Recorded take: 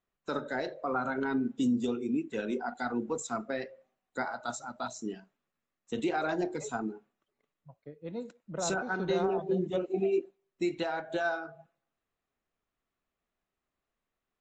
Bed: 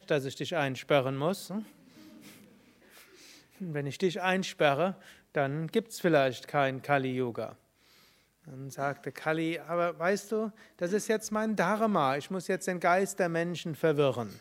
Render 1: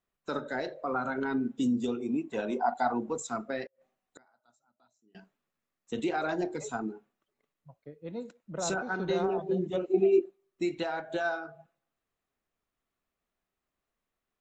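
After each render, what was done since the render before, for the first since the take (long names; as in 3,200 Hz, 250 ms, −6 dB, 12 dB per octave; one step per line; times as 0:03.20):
0:02.00–0:03.09: flat-topped bell 820 Hz +10 dB 1.1 octaves
0:03.66–0:05.15: gate with flip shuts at −40 dBFS, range −32 dB
0:09.89–0:10.62: hollow resonant body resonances 360/1,200 Hz, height 8 dB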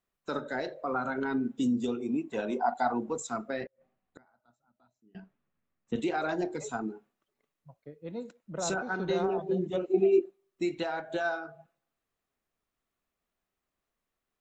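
0:03.61–0:05.96: bass and treble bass +9 dB, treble −14 dB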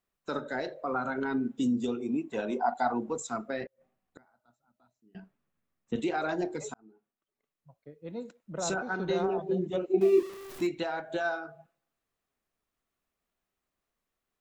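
0:06.74–0:08.22: fade in
0:10.01–0:10.67: converter with a step at zero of −38 dBFS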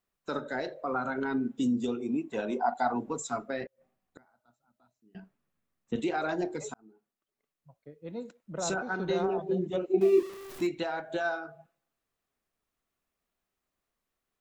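0:02.95–0:03.44: comb filter 7.1 ms, depth 55%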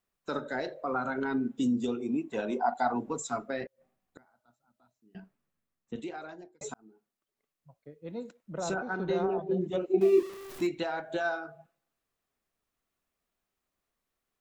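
0:05.18–0:06.61: fade out
0:08.58–0:09.61: high-shelf EQ 2,900 Hz −7.5 dB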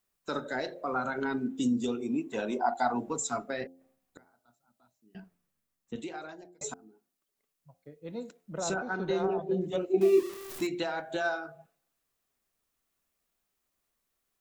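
high-shelf EQ 4,500 Hz +7.5 dB
hum removal 88.17 Hz, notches 9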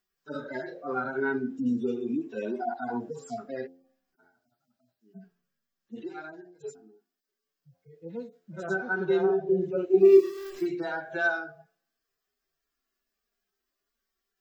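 harmonic-percussive split with one part muted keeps harmonic
thirty-one-band graphic EQ 400 Hz +7 dB, 1,600 Hz +9 dB, 3,150 Hz +3 dB, 5,000 Hz +7 dB, 10,000 Hz −10 dB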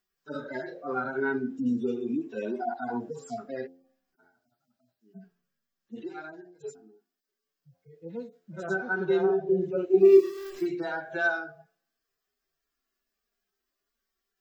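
no processing that can be heard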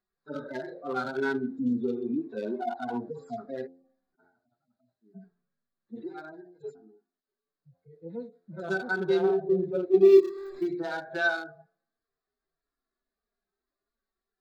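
adaptive Wiener filter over 15 samples
parametric band 3,900 Hz +9 dB 0.6 octaves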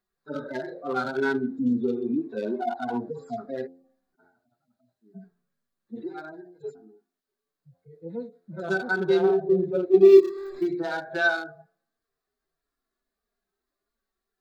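level +3.5 dB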